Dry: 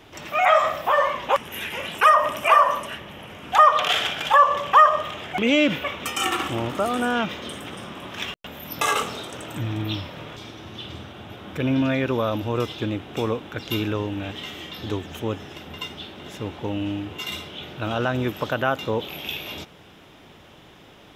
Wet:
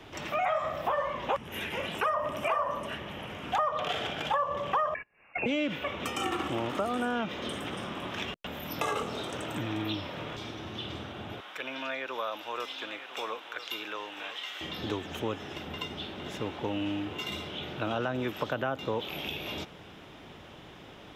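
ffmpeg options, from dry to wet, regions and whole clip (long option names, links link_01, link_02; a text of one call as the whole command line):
ffmpeg -i in.wav -filter_complex "[0:a]asettb=1/sr,asplit=3[link_01][link_02][link_03];[link_01]atrim=end=4.944[link_04];[link_02]atrim=start=4.94:end=5.46,asetpts=PTS-STARTPTS,afade=type=in:duration=0.004:curve=qsin,afade=type=out:start_time=0.516:duration=0.004:curve=qsin,agate=range=-35dB:threshold=-27dB:ratio=16:release=100:detection=peak,acompressor=mode=upward:threshold=-43dB:ratio=2.5:attack=3.2:release=140:knee=2.83:detection=peak,lowpass=frequency=2500:width_type=q:width=0.5098,lowpass=frequency=2500:width_type=q:width=0.6013,lowpass=frequency=2500:width_type=q:width=0.9,lowpass=frequency=2500:width_type=q:width=2.563,afreqshift=-2900[link_05];[link_03]atrim=start=5.456[link_06];[link_04][link_05]acrossfade=duration=0.004:curve1=hsin:curve2=qsin[link_07];[link_07][link_06]acrossfade=duration=0.004:curve1=qsin:curve2=hsin,asettb=1/sr,asplit=3[link_08][link_09][link_10];[link_08]atrim=end=11.404[link_11];[link_09]atrim=start=11.4:end=14.61,asetpts=PTS-STARTPTS,afade=type=in:duration=0.004:curve=qsin,afade=type=out:start_time=3.206:duration=0.004:curve=qsin,highpass=1000,aecho=1:1:999:0.188,atrim=end_sample=141561[link_12];[link_10]atrim=start=14.606[link_13];[link_11][link_12]acrossfade=duration=0.004:curve1=hsin:curve2=qsin[link_14];[link_14][link_13]acrossfade=duration=0.004:curve1=qsin:curve2=hsin,highshelf=frequency=7200:gain=-8,acrossover=split=210|770[link_15][link_16][link_17];[link_15]acompressor=threshold=-43dB:ratio=4[link_18];[link_16]acompressor=threshold=-32dB:ratio=4[link_19];[link_17]acompressor=threshold=-35dB:ratio=4[link_20];[link_18][link_19][link_20]amix=inputs=3:normalize=0" out.wav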